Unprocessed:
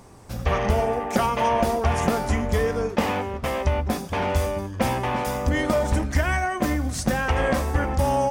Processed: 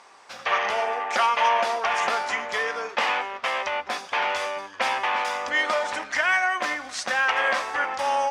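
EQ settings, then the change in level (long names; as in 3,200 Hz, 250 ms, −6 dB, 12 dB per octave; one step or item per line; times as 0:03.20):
high-pass filter 1,100 Hz 12 dB per octave
low-pass filter 4,400 Hz 12 dB per octave
+7.0 dB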